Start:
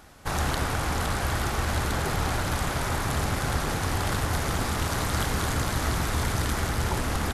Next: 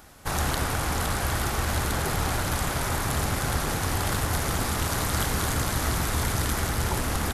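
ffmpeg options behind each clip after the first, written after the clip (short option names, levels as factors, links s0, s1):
-af "highshelf=f=9400:g=9"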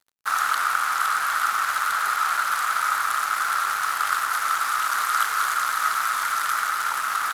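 -af "highpass=f=1300:t=q:w=7.2,aeval=exprs='sgn(val(0))*max(abs(val(0))-0.0126,0)':c=same"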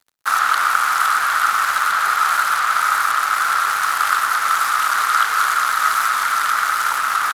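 -filter_complex "[0:a]acrossover=split=200|5500[s0][s1][s2];[s2]alimiter=limit=0.0668:level=0:latency=1:release=293[s3];[s0][s1][s3]amix=inputs=3:normalize=0,asplit=2[s4][s5];[s5]adelay=128.3,volume=0.178,highshelf=f=4000:g=-2.89[s6];[s4][s6]amix=inputs=2:normalize=0,volume=2"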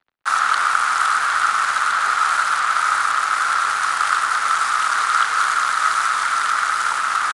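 -filter_complex "[0:a]acrossover=split=310|3500[s0][s1][s2];[s2]acrusher=bits=6:mix=0:aa=0.000001[s3];[s0][s1][s3]amix=inputs=3:normalize=0,aresample=22050,aresample=44100,volume=0.891"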